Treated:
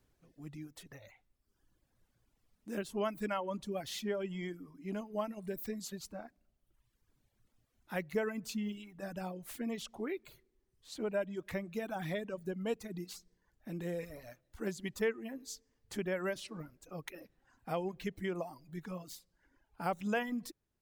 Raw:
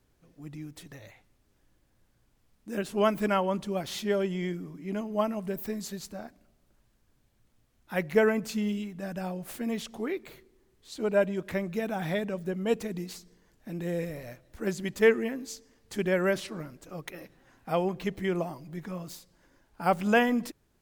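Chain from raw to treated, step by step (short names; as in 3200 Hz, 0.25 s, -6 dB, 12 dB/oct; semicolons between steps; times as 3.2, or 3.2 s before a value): reverb removal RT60 1.1 s; compressor 2:1, threshold -31 dBFS, peak gain reduction 8.5 dB; gain -4 dB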